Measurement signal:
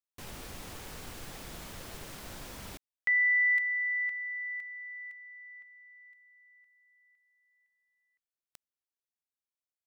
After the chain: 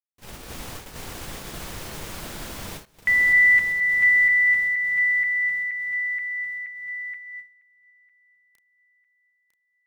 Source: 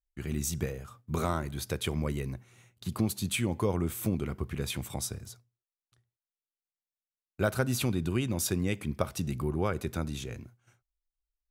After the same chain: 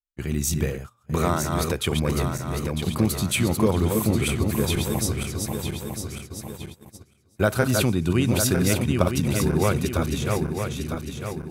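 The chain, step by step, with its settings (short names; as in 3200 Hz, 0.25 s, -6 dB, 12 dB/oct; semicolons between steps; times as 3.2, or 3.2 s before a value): regenerating reverse delay 0.476 s, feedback 67%, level -4 dB; gate -43 dBFS, range -19 dB; gain +7 dB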